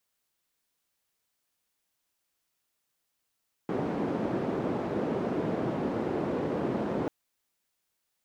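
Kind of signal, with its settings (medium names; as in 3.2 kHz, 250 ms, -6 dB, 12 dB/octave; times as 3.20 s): noise band 190–380 Hz, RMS -30.5 dBFS 3.39 s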